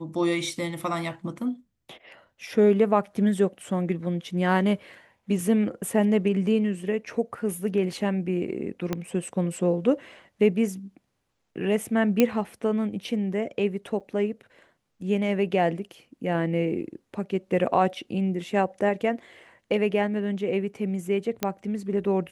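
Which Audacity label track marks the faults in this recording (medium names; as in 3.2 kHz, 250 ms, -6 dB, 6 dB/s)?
8.930000	8.930000	pop -13 dBFS
12.200000	12.200000	pop -7 dBFS
14.000000	14.010000	dropout 6.9 ms
21.430000	21.430000	pop -10 dBFS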